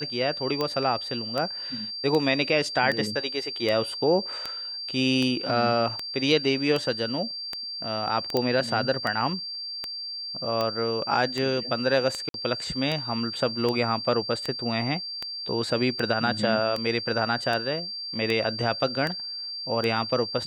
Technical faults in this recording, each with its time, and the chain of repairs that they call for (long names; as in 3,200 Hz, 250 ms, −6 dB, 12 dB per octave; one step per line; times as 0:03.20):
scratch tick 78 rpm −14 dBFS
whistle 4,700 Hz −32 dBFS
0:08.37: click −11 dBFS
0:12.29–0:12.34: drop-out 52 ms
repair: click removal
notch filter 4,700 Hz, Q 30
repair the gap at 0:12.29, 52 ms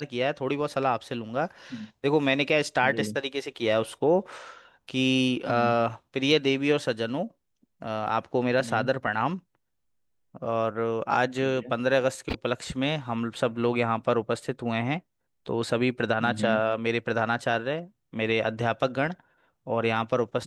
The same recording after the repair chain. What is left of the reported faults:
none of them is left